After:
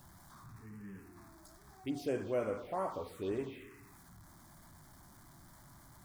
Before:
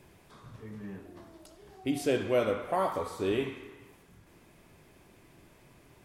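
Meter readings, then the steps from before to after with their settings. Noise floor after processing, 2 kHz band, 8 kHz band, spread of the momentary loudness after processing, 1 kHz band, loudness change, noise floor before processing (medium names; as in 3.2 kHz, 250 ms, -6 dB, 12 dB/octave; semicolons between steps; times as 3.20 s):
-59 dBFS, -10.5 dB, -8.5 dB, 22 LU, -8.0 dB, -8.0 dB, -60 dBFS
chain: jump at every zero crossing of -44.5 dBFS; touch-sensitive phaser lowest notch 380 Hz, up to 3.7 kHz, full sweep at -24 dBFS; trim -7.5 dB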